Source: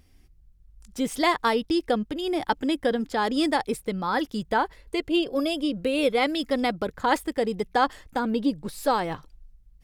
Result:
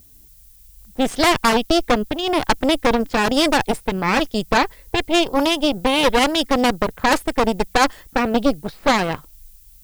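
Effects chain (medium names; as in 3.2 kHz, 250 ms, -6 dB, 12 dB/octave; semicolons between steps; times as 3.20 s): Chebyshev shaper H 8 -11 dB, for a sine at -8 dBFS; level-controlled noise filter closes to 880 Hz, open at -18.5 dBFS; added noise violet -54 dBFS; trim +4 dB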